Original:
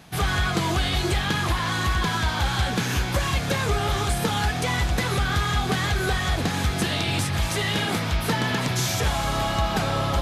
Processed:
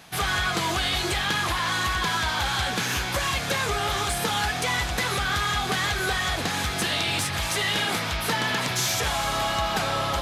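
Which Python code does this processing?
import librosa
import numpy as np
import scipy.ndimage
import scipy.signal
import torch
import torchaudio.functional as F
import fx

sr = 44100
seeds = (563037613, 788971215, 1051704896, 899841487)

p1 = fx.low_shelf(x, sr, hz=420.0, db=-10.5)
p2 = 10.0 ** (-27.5 / 20.0) * np.tanh(p1 / 10.0 ** (-27.5 / 20.0))
y = p1 + (p2 * librosa.db_to_amplitude(-7.0))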